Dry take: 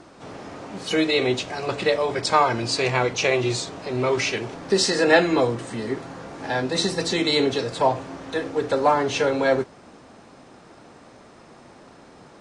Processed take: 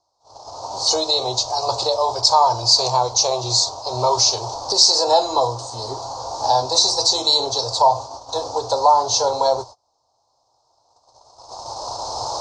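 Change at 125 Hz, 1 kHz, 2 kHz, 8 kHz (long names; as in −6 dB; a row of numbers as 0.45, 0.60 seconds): −2.0, +7.5, −19.5, +12.0 decibels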